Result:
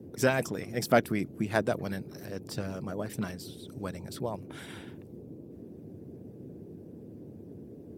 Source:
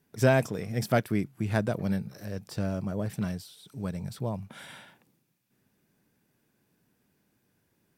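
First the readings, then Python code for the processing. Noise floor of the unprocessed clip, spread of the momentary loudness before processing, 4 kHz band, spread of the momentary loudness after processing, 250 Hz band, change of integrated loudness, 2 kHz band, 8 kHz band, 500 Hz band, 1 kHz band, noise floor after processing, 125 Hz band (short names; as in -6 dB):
-73 dBFS, 17 LU, +1.5 dB, 20 LU, -2.5 dB, -2.0 dB, +0.5 dB, +2.0 dB, -0.5 dB, +1.0 dB, -48 dBFS, -6.5 dB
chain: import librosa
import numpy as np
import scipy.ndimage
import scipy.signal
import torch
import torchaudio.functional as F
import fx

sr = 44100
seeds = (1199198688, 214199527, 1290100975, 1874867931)

y = fx.hpss(x, sr, part='harmonic', gain_db=-12)
y = fx.dmg_noise_band(y, sr, seeds[0], low_hz=81.0, high_hz=410.0, level_db=-49.0)
y = y * librosa.db_to_amplitude(3.0)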